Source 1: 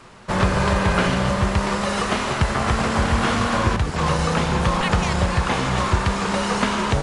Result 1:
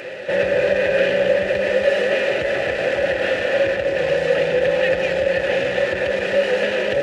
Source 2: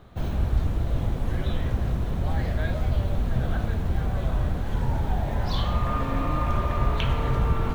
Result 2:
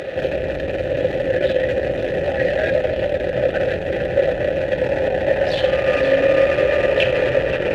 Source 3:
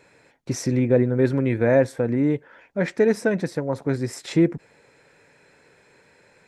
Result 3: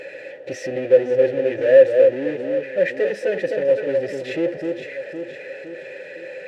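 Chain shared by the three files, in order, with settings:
on a send: echo whose repeats swap between lows and highs 256 ms, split 1.1 kHz, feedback 54%, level -6.5 dB; on the sum: power-law waveshaper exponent 0.5; vowel filter e; comb of notches 230 Hz; upward compressor, threshold -48 dBFS; normalise loudness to -19 LUFS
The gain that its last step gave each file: +8.5 dB, +19.5 dB, +5.5 dB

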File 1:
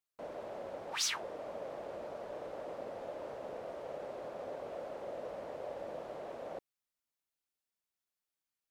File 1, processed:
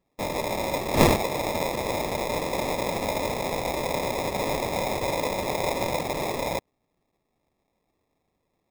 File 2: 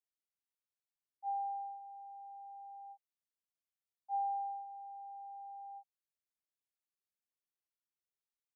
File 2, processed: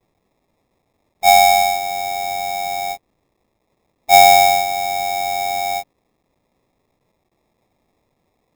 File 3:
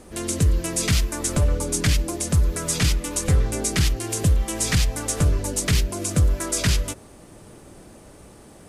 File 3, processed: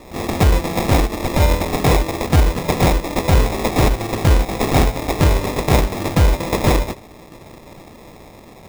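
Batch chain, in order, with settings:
formants flattened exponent 0.6; sample-rate reducer 1.5 kHz, jitter 0%; peak normalisation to -3 dBFS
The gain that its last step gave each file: +16.0 dB, +27.5 dB, +5.0 dB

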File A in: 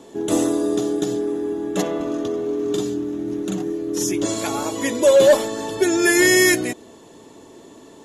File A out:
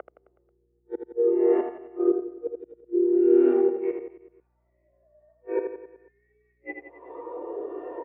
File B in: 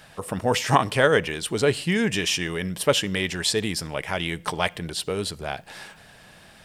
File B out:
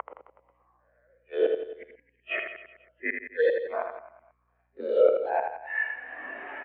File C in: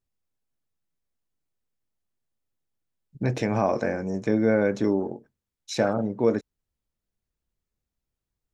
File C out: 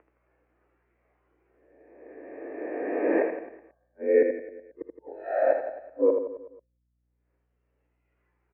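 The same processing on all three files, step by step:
reverse spectral sustain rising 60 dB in 1.50 s; reverb removal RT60 1.7 s; peak limiter -12 dBFS; upward compressor, threshold -24 dBFS; mistuned SSB +57 Hz 270–2400 Hz; inverted gate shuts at -20 dBFS, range -39 dB; on a send: reverse bouncing-ball echo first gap 80 ms, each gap 1.1×, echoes 5; on the sum: hum 60 Hz, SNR 28 dB; spectral contrast expander 1.5:1; peak normalisation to -9 dBFS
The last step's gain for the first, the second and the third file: +7.0 dB, +8.5 dB, +8.0 dB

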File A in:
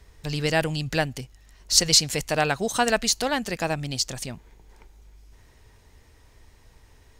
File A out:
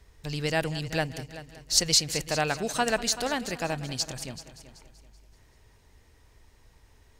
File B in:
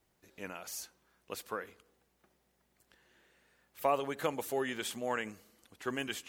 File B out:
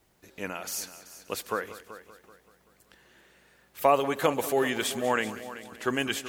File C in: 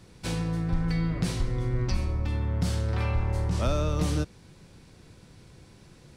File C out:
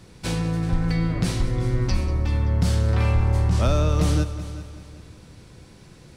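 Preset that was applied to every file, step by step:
multi-head delay 191 ms, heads first and second, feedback 41%, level -16.5 dB; peak normalisation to -9 dBFS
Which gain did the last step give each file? -4.5 dB, +8.5 dB, +4.5 dB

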